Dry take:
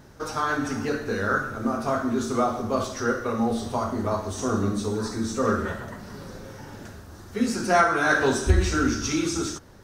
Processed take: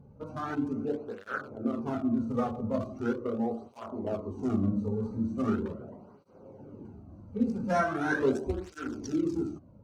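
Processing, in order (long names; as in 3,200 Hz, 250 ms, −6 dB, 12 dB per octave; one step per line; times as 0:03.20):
adaptive Wiener filter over 25 samples
tilt shelving filter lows +4.5 dB, about 720 Hz
through-zero flanger with one copy inverted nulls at 0.4 Hz, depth 3.2 ms
level −4.5 dB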